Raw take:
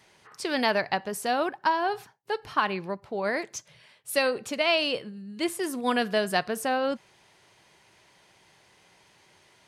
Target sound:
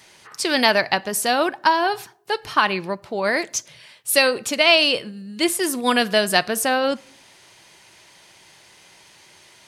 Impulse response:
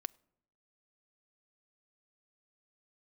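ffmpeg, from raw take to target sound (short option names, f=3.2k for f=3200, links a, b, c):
-filter_complex "[0:a]highshelf=f=2.4k:g=8,asplit=2[a][b];[1:a]atrim=start_sample=2205[c];[b][c]afir=irnorm=-1:irlink=0,volume=13.5dB[d];[a][d]amix=inputs=2:normalize=0,volume=-7.5dB"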